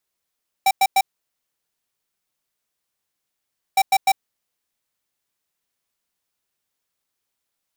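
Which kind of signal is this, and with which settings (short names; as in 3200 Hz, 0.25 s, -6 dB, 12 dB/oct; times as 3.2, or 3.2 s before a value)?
beep pattern square 777 Hz, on 0.05 s, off 0.10 s, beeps 3, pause 2.76 s, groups 2, -15 dBFS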